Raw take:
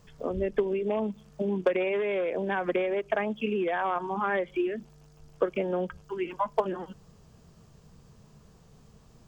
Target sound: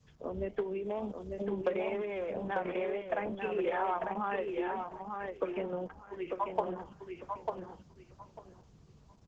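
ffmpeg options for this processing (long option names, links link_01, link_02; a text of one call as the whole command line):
ffmpeg -i in.wav -filter_complex "[0:a]highpass=49,asplit=3[link_01][link_02][link_03];[link_01]afade=type=out:start_time=0.84:duration=0.02[link_04];[link_02]aemphasis=mode=production:type=50fm,afade=type=in:start_time=0.84:duration=0.02,afade=type=out:start_time=1.43:duration=0.02[link_05];[link_03]afade=type=in:start_time=1.43:duration=0.02[link_06];[link_04][link_05][link_06]amix=inputs=3:normalize=0,asettb=1/sr,asplit=3[link_07][link_08][link_09];[link_07]atrim=end=3.364[link_10];[link_08]atrim=start=3.36:end=3.94,asetpts=PTS-STARTPTS,afade=type=in:duration=0.004:curve=qsin,afade=type=out:start_time=0.576:duration=0.004:curve=qsin,aecho=1:1:2.3:0.64,atrim=end_sample=25578[link_11];[link_09]atrim=start=3.936[link_12];[link_10][link_11]acrossfade=duration=0.004:curve1=hsin:curve2=qsin[link_13];[link_13][link_12]acrossfade=duration=0.004:curve1=qsin:curve2=hsin,asettb=1/sr,asplit=3[link_14][link_15][link_16];[link_14]atrim=end=5.654[link_17];[link_15]atrim=start=5.65:end=6.52,asetpts=PTS-STARTPTS,afade=type=in:duration=0.004:curve=qsin,afade=type=out:start_time=0.866:duration=0.004:curve=qsin,agate=range=-33dB:threshold=-44dB:ratio=3:detection=peak[link_18];[link_16]atrim=start=6.516[link_19];[link_17][link_18]acrossfade=duration=0.004:curve1=hsin:curve2=qsin[link_20];[link_20][link_19]acrossfade=duration=0.004:curve1=qsin:curve2=hsin,adynamicequalizer=threshold=0.00891:dfrequency=830:dqfactor=1.8:tfrequency=830:tqfactor=1.8:attack=5:release=100:ratio=0.375:range=2.5:mode=boostabove:tftype=bell,acrossover=split=110|1600[link_21][link_22][link_23];[link_21]aeval=exprs='0.0224*sin(PI/2*1.58*val(0)/0.0224)':channel_layout=same[link_24];[link_24][link_22][link_23]amix=inputs=3:normalize=0,flanger=delay=7.4:depth=4.8:regen=-85:speed=1.6:shape=triangular,aecho=1:1:896|1792|2688:0.596|0.119|0.0238,aresample=16000,aresample=44100,volume=-3.5dB" -ar 48000 -c:a libopus -b:a 10k out.opus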